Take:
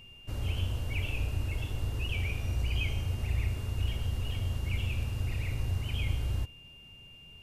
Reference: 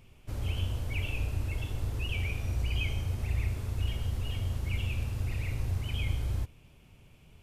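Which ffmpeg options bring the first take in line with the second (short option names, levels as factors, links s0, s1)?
-af "bandreject=f=2800:w=30"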